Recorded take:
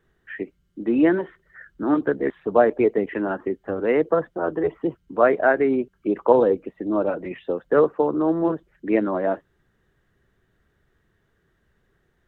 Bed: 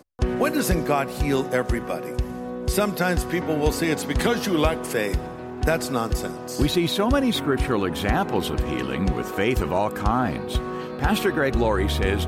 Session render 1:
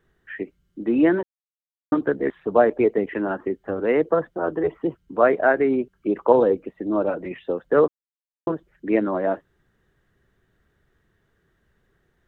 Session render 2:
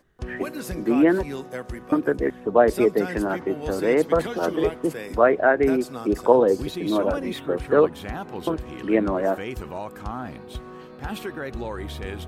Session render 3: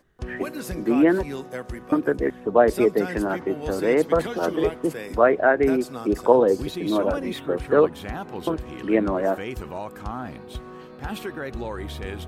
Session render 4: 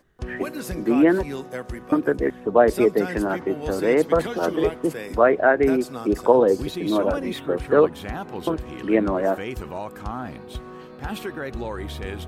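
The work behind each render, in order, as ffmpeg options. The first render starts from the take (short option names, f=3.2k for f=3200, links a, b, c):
-filter_complex "[0:a]asplit=5[a][b][c][d][e];[a]atrim=end=1.23,asetpts=PTS-STARTPTS,afade=t=out:st=1.226:d=0.004:c=hsin[f];[b]atrim=start=1.23:end=1.92,asetpts=PTS-STARTPTS,volume=0[g];[c]atrim=start=1.92:end=7.88,asetpts=PTS-STARTPTS,afade=t=in:d=0.004:c=hsin,afade=t=out:st=5.956:d=0.004:c=hsin[h];[d]atrim=start=7.88:end=8.47,asetpts=PTS-STARTPTS,volume=0[i];[e]atrim=start=8.47,asetpts=PTS-STARTPTS,afade=t=in:d=0.004:c=hsin[j];[f][g][h][i][j]concat=n=5:v=0:a=1"
-filter_complex "[1:a]volume=-10.5dB[a];[0:a][a]amix=inputs=2:normalize=0"
-af anull
-af "volume=1dB,alimiter=limit=-3dB:level=0:latency=1"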